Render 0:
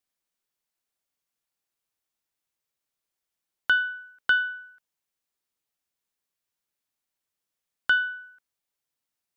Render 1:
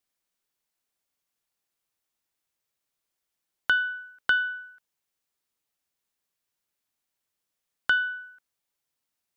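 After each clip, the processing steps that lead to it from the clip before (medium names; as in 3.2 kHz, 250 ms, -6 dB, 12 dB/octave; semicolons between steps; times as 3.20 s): compression 1.5:1, threshold -27 dBFS, peak gain reduction 4 dB; trim +2 dB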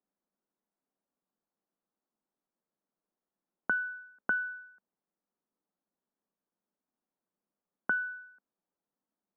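Gaussian low-pass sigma 6.9 samples; resonant low shelf 150 Hz -9 dB, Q 3; trim +2 dB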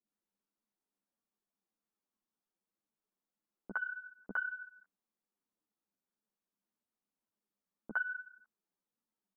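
bands offset in time lows, highs 60 ms, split 590 Hz; three-phase chorus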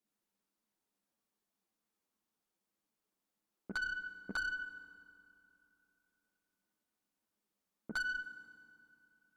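valve stage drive 38 dB, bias 0.3; on a send at -13.5 dB: reverberation RT60 2.8 s, pre-delay 3 ms; on the sum: trim +5 dB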